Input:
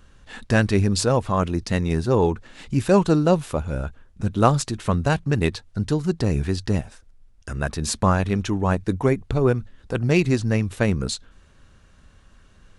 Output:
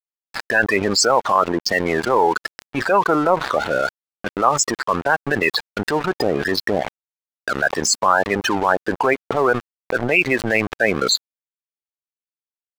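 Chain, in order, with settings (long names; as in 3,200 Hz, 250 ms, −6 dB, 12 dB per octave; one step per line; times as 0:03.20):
adaptive Wiener filter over 15 samples
spectral peaks only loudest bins 32
high-pass filter 1,000 Hz 12 dB per octave
noise gate −53 dBFS, range −7 dB
transient designer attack −7 dB, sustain 0 dB
automatic gain control gain up to 14.5 dB
dead-zone distortion −42 dBFS
envelope flattener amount 70%
level −1 dB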